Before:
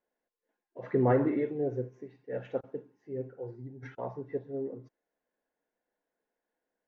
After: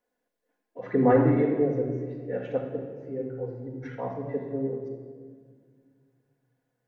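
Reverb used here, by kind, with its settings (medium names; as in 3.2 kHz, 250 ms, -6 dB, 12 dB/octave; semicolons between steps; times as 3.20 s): simulated room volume 2700 m³, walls mixed, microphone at 1.9 m; trim +2.5 dB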